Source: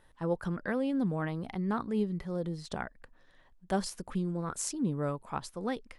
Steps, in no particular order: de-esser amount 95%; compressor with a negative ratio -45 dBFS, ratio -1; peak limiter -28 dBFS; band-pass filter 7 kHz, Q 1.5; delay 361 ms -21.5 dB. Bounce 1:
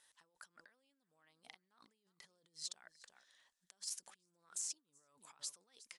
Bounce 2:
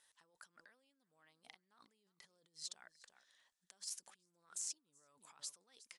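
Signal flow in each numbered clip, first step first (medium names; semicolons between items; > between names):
delay > de-esser > compressor with a negative ratio > band-pass filter > peak limiter; delay > de-esser > peak limiter > compressor with a negative ratio > band-pass filter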